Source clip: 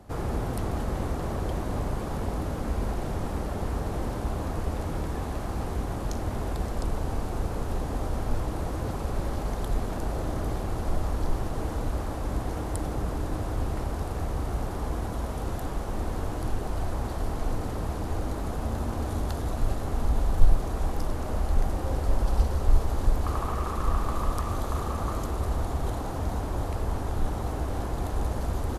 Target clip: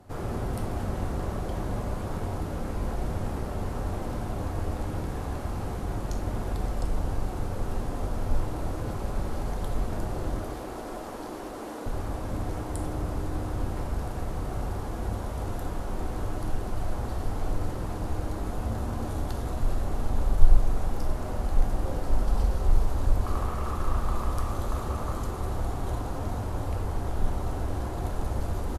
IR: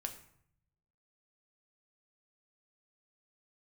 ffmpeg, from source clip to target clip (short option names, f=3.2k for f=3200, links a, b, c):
-filter_complex "[0:a]asettb=1/sr,asplit=3[a][b][c];[a]atrim=end=10.404[d];[b]atrim=start=10.4:end=11.86,asetpts=PTS-STARTPTS,afade=t=in:d=0.004:c=qsin,afade=t=out:st=1.456:d=0.004:c=qsin,highpass=f=240:w=0.5412,highpass=f=240:w=1.3066[e];[c]atrim=start=11.856[f];[d][e]acrossfade=d=0.004:c1=hsin:c2=qsin[g];[g][f]acrossfade=d=0.004:c1=qsin:c2=hsin,asplit=2[h][i];[i]adelay=1166,volume=-18dB,highshelf=f=4k:g=-26.2[j];[h][j]amix=inputs=2:normalize=0[k];[1:a]atrim=start_sample=2205,asetrate=40131,aresample=44100[l];[k][l]afir=irnorm=-1:irlink=0,volume=-1dB"